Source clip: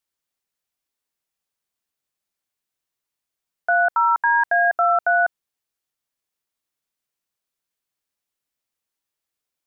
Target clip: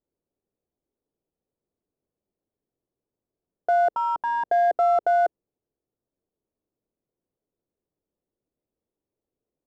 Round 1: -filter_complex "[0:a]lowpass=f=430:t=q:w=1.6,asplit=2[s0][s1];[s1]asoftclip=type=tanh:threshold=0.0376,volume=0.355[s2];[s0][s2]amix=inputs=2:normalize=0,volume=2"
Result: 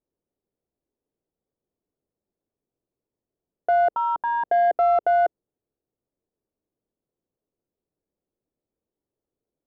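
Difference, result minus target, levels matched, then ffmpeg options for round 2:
saturation: distortion -6 dB
-filter_complex "[0:a]lowpass=f=430:t=q:w=1.6,asplit=2[s0][s1];[s1]asoftclip=type=tanh:threshold=0.0112,volume=0.355[s2];[s0][s2]amix=inputs=2:normalize=0,volume=2"

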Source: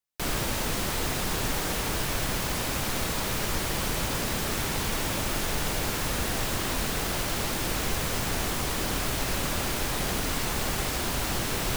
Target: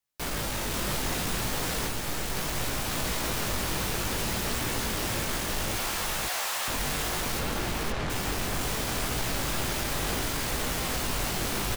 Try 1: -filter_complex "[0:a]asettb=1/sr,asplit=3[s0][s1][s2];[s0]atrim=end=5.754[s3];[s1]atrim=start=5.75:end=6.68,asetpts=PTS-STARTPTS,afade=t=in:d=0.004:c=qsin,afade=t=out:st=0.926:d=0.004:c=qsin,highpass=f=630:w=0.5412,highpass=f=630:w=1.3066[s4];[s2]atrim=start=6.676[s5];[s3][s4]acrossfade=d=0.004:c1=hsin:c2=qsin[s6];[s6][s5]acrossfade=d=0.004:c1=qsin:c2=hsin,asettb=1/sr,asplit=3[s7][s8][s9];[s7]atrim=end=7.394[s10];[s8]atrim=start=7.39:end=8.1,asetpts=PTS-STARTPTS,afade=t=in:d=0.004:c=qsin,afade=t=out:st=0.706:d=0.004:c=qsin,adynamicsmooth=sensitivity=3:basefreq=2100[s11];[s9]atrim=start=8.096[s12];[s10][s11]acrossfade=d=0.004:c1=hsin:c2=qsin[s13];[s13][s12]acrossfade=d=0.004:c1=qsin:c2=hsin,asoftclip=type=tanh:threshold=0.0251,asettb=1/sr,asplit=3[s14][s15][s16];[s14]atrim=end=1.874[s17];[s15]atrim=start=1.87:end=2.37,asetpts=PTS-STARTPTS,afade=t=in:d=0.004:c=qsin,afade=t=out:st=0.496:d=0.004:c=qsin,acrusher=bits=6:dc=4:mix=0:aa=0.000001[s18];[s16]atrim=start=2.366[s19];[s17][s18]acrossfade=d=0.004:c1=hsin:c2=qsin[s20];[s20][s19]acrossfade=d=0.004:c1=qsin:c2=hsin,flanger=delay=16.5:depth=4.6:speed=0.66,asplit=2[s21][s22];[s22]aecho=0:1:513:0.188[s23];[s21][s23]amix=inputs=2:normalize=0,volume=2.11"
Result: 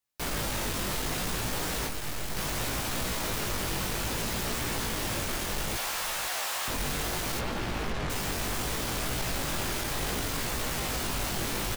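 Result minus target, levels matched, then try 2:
echo-to-direct -11.5 dB
-filter_complex "[0:a]asettb=1/sr,asplit=3[s0][s1][s2];[s0]atrim=end=5.754[s3];[s1]atrim=start=5.75:end=6.68,asetpts=PTS-STARTPTS,afade=t=in:d=0.004:c=qsin,afade=t=out:st=0.926:d=0.004:c=qsin,highpass=f=630:w=0.5412,highpass=f=630:w=1.3066[s4];[s2]atrim=start=6.676[s5];[s3][s4]acrossfade=d=0.004:c1=hsin:c2=qsin[s6];[s6][s5]acrossfade=d=0.004:c1=qsin:c2=hsin,asettb=1/sr,asplit=3[s7][s8][s9];[s7]atrim=end=7.394[s10];[s8]atrim=start=7.39:end=8.1,asetpts=PTS-STARTPTS,afade=t=in:d=0.004:c=qsin,afade=t=out:st=0.706:d=0.004:c=qsin,adynamicsmooth=sensitivity=3:basefreq=2100[s11];[s9]atrim=start=8.096[s12];[s10][s11]acrossfade=d=0.004:c1=hsin:c2=qsin[s13];[s13][s12]acrossfade=d=0.004:c1=qsin:c2=hsin,asoftclip=type=tanh:threshold=0.0251,asettb=1/sr,asplit=3[s14][s15][s16];[s14]atrim=end=1.874[s17];[s15]atrim=start=1.87:end=2.37,asetpts=PTS-STARTPTS,afade=t=in:d=0.004:c=qsin,afade=t=out:st=0.496:d=0.004:c=qsin,acrusher=bits=6:dc=4:mix=0:aa=0.000001[s18];[s16]atrim=start=2.366[s19];[s17][s18]acrossfade=d=0.004:c1=hsin:c2=qsin[s20];[s20][s19]acrossfade=d=0.004:c1=qsin:c2=hsin,flanger=delay=16.5:depth=4.6:speed=0.66,asplit=2[s21][s22];[s22]aecho=0:1:513:0.708[s23];[s21][s23]amix=inputs=2:normalize=0,volume=2.11"

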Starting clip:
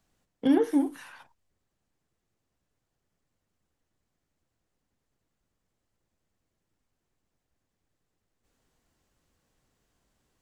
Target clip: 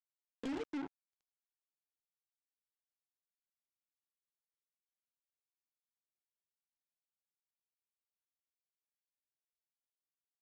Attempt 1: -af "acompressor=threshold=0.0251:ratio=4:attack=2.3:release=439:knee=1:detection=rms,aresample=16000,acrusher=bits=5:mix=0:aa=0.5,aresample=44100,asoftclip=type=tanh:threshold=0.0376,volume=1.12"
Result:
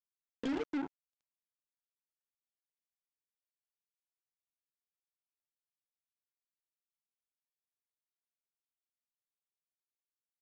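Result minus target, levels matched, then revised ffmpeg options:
saturation: distortion -10 dB
-af "acompressor=threshold=0.0251:ratio=4:attack=2.3:release=439:knee=1:detection=rms,aresample=16000,acrusher=bits=5:mix=0:aa=0.5,aresample=44100,asoftclip=type=tanh:threshold=0.015,volume=1.12"

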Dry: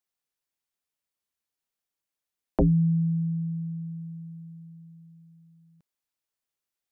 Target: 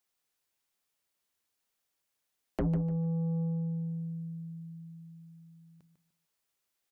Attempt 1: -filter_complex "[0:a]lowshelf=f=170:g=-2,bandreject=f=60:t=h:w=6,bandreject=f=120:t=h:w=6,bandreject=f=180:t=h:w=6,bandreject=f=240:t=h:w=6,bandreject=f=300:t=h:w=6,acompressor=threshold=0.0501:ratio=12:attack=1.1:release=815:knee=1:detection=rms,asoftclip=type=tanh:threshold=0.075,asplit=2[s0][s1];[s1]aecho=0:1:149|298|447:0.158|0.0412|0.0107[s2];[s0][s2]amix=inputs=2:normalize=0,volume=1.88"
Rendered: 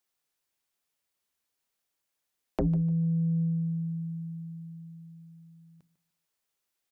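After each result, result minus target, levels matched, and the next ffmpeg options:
saturation: distortion -13 dB; echo-to-direct -7 dB
-filter_complex "[0:a]lowshelf=f=170:g=-2,bandreject=f=60:t=h:w=6,bandreject=f=120:t=h:w=6,bandreject=f=180:t=h:w=6,bandreject=f=240:t=h:w=6,bandreject=f=300:t=h:w=6,acompressor=threshold=0.0501:ratio=12:attack=1.1:release=815:knee=1:detection=rms,asoftclip=type=tanh:threshold=0.0282,asplit=2[s0][s1];[s1]aecho=0:1:149|298|447:0.158|0.0412|0.0107[s2];[s0][s2]amix=inputs=2:normalize=0,volume=1.88"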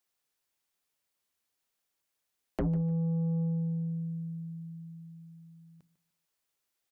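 echo-to-direct -7 dB
-filter_complex "[0:a]lowshelf=f=170:g=-2,bandreject=f=60:t=h:w=6,bandreject=f=120:t=h:w=6,bandreject=f=180:t=h:w=6,bandreject=f=240:t=h:w=6,bandreject=f=300:t=h:w=6,acompressor=threshold=0.0501:ratio=12:attack=1.1:release=815:knee=1:detection=rms,asoftclip=type=tanh:threshold=0.0282,asplit=2[s0][s1];[s1]aecho=0:1:149|298|447:0.355|0.0923|0.024[s2];[s0][s2]amix=inputs=2:normalize=0,volume=1.88"

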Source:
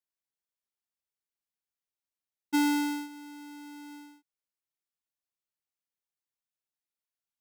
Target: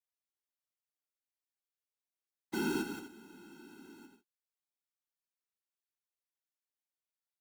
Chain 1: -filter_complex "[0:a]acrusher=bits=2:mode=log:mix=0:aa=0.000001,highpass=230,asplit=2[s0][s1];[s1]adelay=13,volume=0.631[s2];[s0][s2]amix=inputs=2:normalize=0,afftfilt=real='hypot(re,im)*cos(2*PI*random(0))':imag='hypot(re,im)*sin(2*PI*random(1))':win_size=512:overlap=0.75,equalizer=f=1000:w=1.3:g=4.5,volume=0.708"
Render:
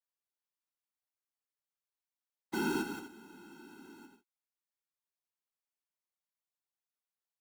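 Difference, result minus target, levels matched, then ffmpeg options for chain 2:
1 kHz band +3.0 dB
-filter_complex "[0:a]acrusher=bits=2:mode=log:mix=0:aa=0.000001,highpass=230,asplit=2[s0][s1];[s1]adelay=13,volume=0.631[s2];[s0][s2]amix=inputs=2:normalize=0,afftfilt=real='hypot(re,im)*cos(2*PI*random(0))':imag='hypot(re,im)*sin(2*PI*random(1))':win_size=512:overlap=0.75,volume=0.708"

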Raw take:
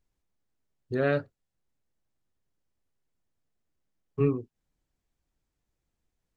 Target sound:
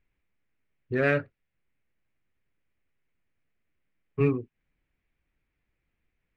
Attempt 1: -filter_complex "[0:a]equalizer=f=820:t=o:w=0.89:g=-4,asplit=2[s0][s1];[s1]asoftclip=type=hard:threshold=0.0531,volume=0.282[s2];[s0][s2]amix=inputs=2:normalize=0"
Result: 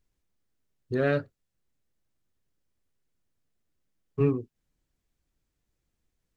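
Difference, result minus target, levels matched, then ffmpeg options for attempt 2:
2 kHz band -5.0 dB
-filter_complex "[0:a]lowpass=f=2300:t=q:w=3.2,equalizer=f=820:t=o:w=0.89:g=-4,asplit=2[s0][s1];[s1]asoftclip=type=hard:threshold=0.0531,volume=0.282[s2];[s0][s2]amix=inputs=2:normalize=0"

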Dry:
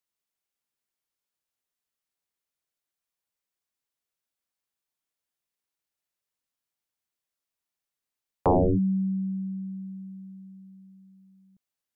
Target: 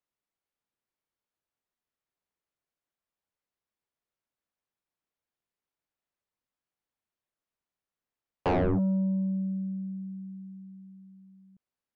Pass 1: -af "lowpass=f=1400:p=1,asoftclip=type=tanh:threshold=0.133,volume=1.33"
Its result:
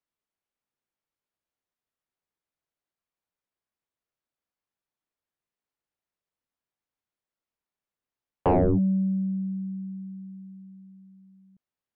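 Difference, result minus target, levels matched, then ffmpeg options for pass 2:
saturation: distortion -10 dB
-af "lowpass=f=1400:p=1,asoftclip=type=tanh:threshold=0.0531,volume=1.33"

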